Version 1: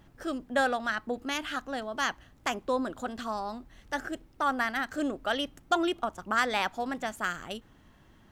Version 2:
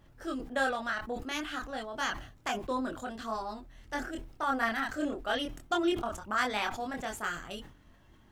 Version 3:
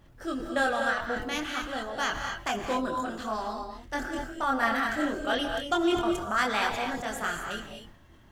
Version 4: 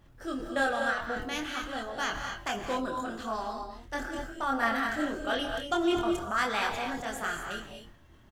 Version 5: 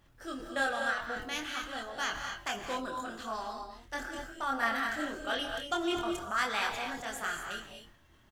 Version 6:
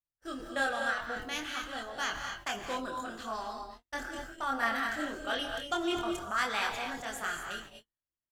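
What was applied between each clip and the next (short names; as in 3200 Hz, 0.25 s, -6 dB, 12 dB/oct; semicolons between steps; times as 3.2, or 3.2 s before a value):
chorus voices 4, 0.26 Hz, delay 25 ms, depth 1.8 ms; sustainer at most 94 dB/s
reverb, pre-delay 3 ms, DRR 4 dB; gain +3 dB
doubler 26 ms -11 dB; gain -2.5 dB
tilt shelf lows -3.5 dB, about 880 Hz; gain -3.5 dB
gate -47 dBFS, range -40 dB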